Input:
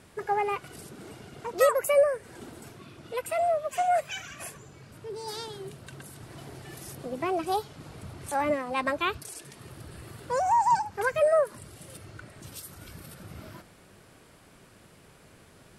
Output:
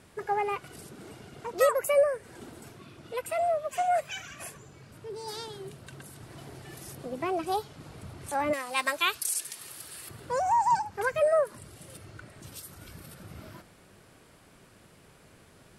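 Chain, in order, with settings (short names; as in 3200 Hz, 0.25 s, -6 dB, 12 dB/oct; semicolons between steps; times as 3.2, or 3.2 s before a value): 8.53–10.09 tilt +4.5 dB/oct; gain -1.5 dB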